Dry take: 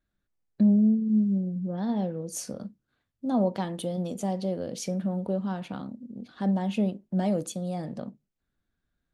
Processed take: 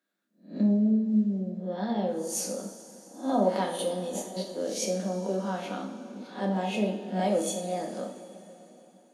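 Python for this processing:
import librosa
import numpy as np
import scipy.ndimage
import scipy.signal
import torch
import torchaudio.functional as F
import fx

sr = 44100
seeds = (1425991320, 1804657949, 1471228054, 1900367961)

y = fx.spec_swells(x, sr, rise_s=0.35)
y = scipy.signal.sosfilt(scipy.signal.butter(4, 250.0, 'highpass', fs=sr, output='sos'), y)
y = fx.over_compress(y, sr, threshold_db=-38.0, ratio=-0.5, at=(3.98, 4.58))
y = fx.rev_double_slope(y, sr, seeds[0], early_s=0.48, late_s=3.9, knee_db=-16, drr_db=0.0)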